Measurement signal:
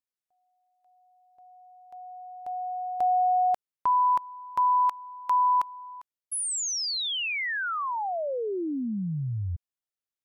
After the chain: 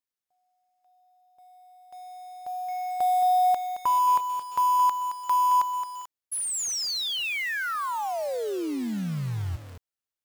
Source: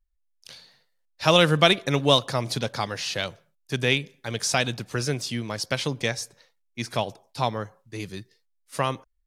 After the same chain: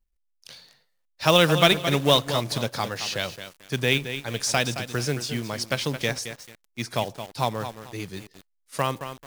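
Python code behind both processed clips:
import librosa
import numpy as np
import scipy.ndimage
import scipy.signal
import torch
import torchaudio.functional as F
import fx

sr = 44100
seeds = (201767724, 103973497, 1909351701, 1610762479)

y = fx.quant_float(x, sr, bits=2)
y = fx.echo_crushed(y, sr, ms=220, feedback_pct=35, bits=6, wet_db=-10)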